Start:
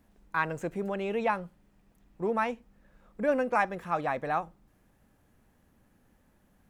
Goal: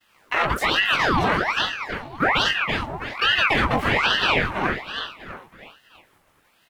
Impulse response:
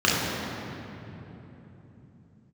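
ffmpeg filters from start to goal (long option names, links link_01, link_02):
-filter_complex "[0:a]agate=range=-33dB:threshold=-59dB:ratio=3:detection=peak,highpass=frequency=320:width=0.5412,highpass=frequency=320:width=1.3066,asplit=2[link_01][link_02];[link_02]asoftclip=type=tanh:threshold=-26dB,volume=-8dB[link_03];[link_01][link_03]amix=inputs=2:normalize=0,asplit=3[link_04][link_05][link_06];[link_05]asetrate=35002,aresample=44100,atempo=1.25992,volume=-5dB[link_07];[link_06]asetrate=66075,aresample=44100,atempo=0.66742,volume=-1dB[link_08];[link_04][link_07][link_08]amix=inputs=3:normalize=0,asplit=2[link_09][link_10];[link_10]adelay=20,volume=-3dB[link_11];[link_09][link_11]amix=inputs=2:normalize=0,aecho=1:1:324|648|972|1296|1620:0.376|0.165|0.0728|0.032|0.0141,alimiter=level_in=17.5dB:limit=-1dB:release=50:level=0:latency=1,aeval=exprs='val(0)*sin(2*PI*1300*n/s+1300*0.8/1.2*sin(2*PI*1.2*n/s))':channel_layout=same,volume=-7.5dB"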